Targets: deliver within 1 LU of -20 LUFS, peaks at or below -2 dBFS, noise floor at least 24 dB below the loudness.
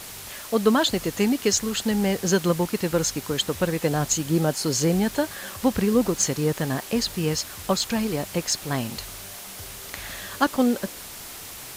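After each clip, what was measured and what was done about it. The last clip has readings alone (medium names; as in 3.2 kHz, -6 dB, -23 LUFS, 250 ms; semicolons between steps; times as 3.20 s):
noise floor -39 dBFS; noise floor target -48 dBFS; loudness -24.0 LUFS; peak level -7.0 dBFS; loudness target -20.0 LUFS
-> noise print and reduce 9 dB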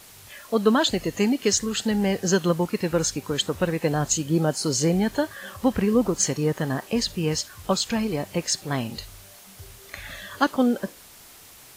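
noise floor -48 dBFS; loudness -24.0 LUFS; peak level -7.0 dBFS; loudness target -20.0 LUFS
-> trim +4 dB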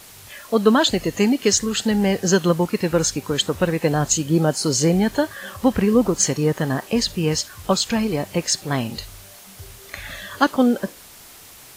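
loudness -20.0 LUFS; peak level -3.0 dBFS; noise floor -44 dBFS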